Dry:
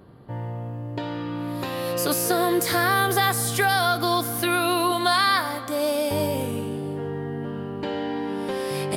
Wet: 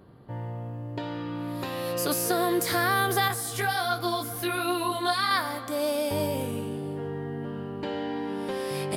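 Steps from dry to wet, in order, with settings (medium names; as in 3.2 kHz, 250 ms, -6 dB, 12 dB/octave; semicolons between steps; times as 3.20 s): 3.28–5.31 s: chorus voices 2, 1.4 Hz, delay 17 ms, depth 3 ms; trim -3.5 dB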